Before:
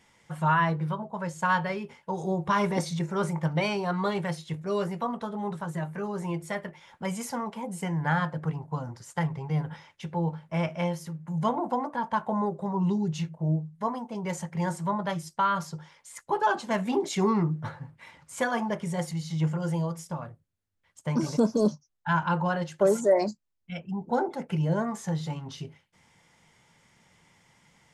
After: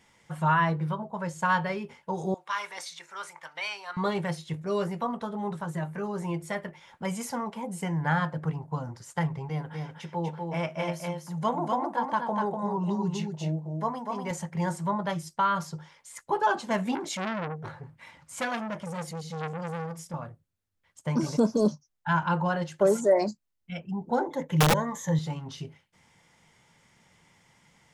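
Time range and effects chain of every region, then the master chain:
2.34–3.97 s: high-pass 1.4 kHz + treble shelf 6.6 kHz -4.5 dB
9.49–14.31 s: high-pass 230 Hz 6 dB/octave + delay 245 ms -4 dB
16.95–20.14 s: band-stop 410 Hz, Q 5.5 + transformer saturation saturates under 1.7 kHz
24.22–25.19 s: rippled EQ curve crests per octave 1.1, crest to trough 12 dB + integer overflow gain 15.5 dB
whole clip: none

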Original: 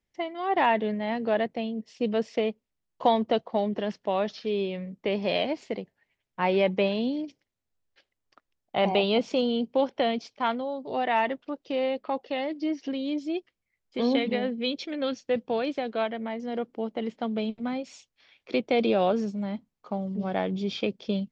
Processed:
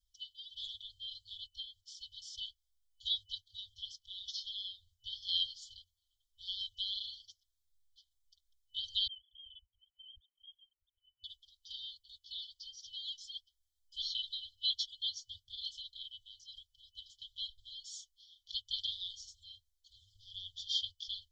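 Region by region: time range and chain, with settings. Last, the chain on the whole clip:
9.07–11.24 s: formants replaced by sine waves + boxcar filter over 18 samples
whole clip: FFT band-reject 110–3000 Hz; comb 4.4 ms, depth 84%; trim +1 dB

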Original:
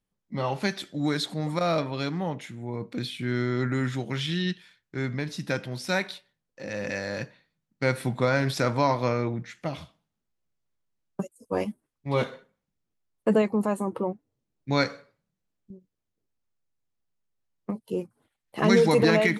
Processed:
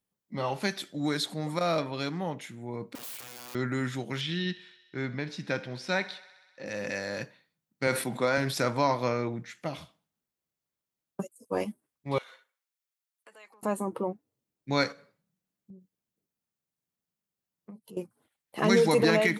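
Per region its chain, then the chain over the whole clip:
2.95–3.55 s: compression 20:1, threshold -33 dBFS + integer overflow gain 38.5 dB
4.21–6.66 s: low-pass 4.7 kHz + thinning echo 64 ms, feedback 76%, high-pass 340 Hz, level -19 dB
7.87–8.38 s: high-pass 180 Hz + decay stretcher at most 100 dB/s
12.18–13.63 s: compression, threshold -34 dBFS + high-pass 1.3 kHz
14.92–17.97 s: compression 3:1, threshold -49 dBFS + peaking EQ 180 Hz +7.5 dB 0.74 oct
whole clip: high-pass 150 Hz 6 dB/octave; treble shelf 9.7 kHz +8.5 dB; trim -2 dB

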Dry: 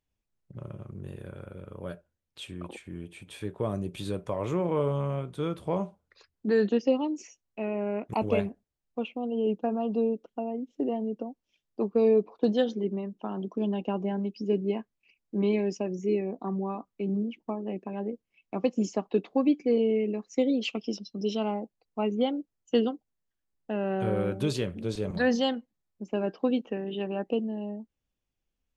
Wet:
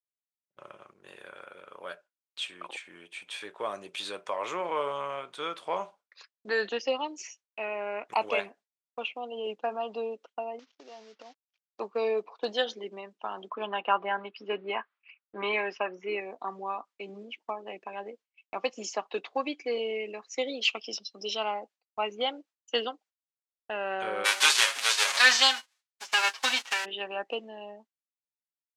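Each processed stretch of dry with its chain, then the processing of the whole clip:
10.59–11.80 s: CVSD coder 32 kbps + compression 12:1, threshold -38 dBFS
13.50–16.20 s: low-pass 3.6 kHz 24 dB/octave + peaking EQ 1.3 kHz +13.5 dB 1.2 oct
24.24–26.84 s: formants flattened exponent 0.3 + high-pass 620 Hz 6 dB/octave + comb 7.3 ms, depth 90%
whole clip: high-pass 1 kHz 12 dB/octave; expander -58 dBFS; low-pass 6.9 kHz 12 dB/octave; trim +8 dB

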